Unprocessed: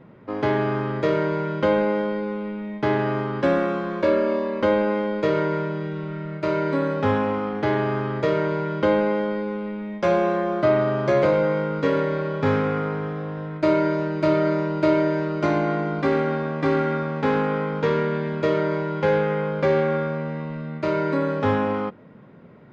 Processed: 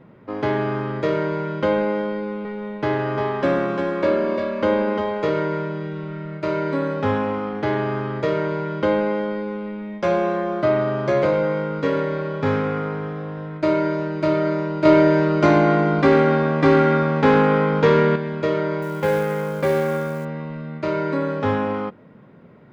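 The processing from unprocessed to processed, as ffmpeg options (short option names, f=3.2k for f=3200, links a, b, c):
-filter_complex "[0:a]asettb=1/sr,asplit=3[a][b][c];[a]atrim=end=2.104[d];[b]atrim=start=2.1:end=5.29,asetpts=PTS-STARTPTS,afade=t=in:d=0.004:c=qsin,afade=t=out:st=3.186:d=0.004:c=qsin,aecho=1:1:349:0.562,atrim=end_sample=140679[e];[c]atrim=start=5.286[f];[d][e]acrossfade=d=0.004:c1=hsin:c2=qsin[g];[g][f]acrossfade=d=0.004:c1=qsin:c2=hsin,asettb=1/sr,asplit=3[h][i][j];[h]atrim=end=14.854[k];[i]atrim=start=14.85:end=18.16,asetpts=PTS-STARTPTS,afade=t=in:d=0.004:c=qsin,afade=t=out:st=3.306:d=0.004:c=qsin,acontrast=77[l];[j]atrim=start=18.156[m];[k][l]acrossfade=d=0.004:c1=hsin:c2=qsin[n];[n][m]acrossfade=d=0.004:c1=qsin:c2=hsin,asettb=1/sr,asplit=3[o][p][q];[o]atrim=end=18.824[r];[p]atrim=start=18.82:end=20.25,asetpts=PTS-STARTPTS,afade=t=in:d=0.004:c=qsin,afade=t=out:st=1.426:d=0.004:c=qsin,acrusher=bits=6:mode=log:mix=0:aa=0.000001[s];[q]atrim=start=20.246[t];[r][s]acrossfade=d=0.004:c1=hsin:c2=qsin[u];[u][t]acrossfade=d=0.004:c1=qsin:c2=hsin"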